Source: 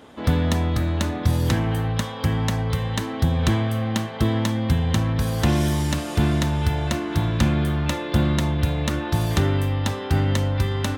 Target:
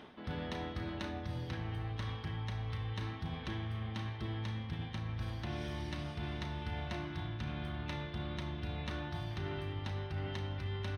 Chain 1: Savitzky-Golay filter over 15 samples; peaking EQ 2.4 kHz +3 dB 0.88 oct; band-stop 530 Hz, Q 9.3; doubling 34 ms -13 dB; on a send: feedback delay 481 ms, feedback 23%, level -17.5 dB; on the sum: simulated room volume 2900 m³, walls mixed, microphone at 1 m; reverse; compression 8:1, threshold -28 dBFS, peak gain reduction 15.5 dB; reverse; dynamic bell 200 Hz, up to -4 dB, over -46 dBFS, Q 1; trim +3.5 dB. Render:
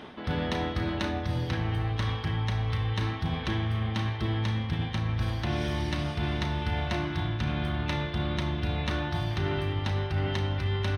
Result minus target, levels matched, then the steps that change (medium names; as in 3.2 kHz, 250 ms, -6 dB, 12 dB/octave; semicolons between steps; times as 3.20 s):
compression: peak gain reduction -10.5 dB
change: compression 8:1, threshold -40 dBFS, peak gain reduction 26 dB